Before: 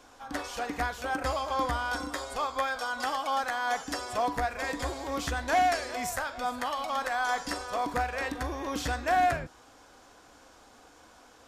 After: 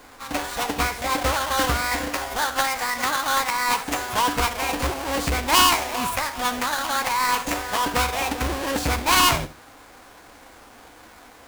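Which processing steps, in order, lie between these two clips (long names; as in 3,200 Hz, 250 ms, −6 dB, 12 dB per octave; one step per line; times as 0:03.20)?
each half-wave held at its own peak
formants moved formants +5 semitones
flutter between parallel walls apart 11.7 metres, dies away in 0.27 s
level +3.5 dB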